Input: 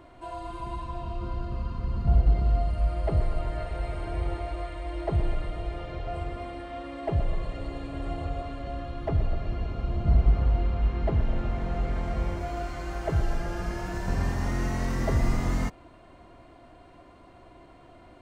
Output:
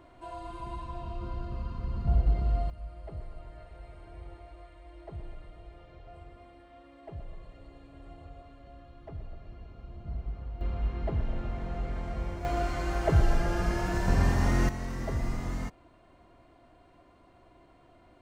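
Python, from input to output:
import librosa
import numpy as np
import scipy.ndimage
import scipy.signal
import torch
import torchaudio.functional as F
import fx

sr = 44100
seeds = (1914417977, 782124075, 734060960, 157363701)

y = fx.gain(x, sr, db=fx.steps((0.0, -4.0), (2.7, -16.0), (10.61, -5.5), (12.45, 3.0), (14.69, -7.0)))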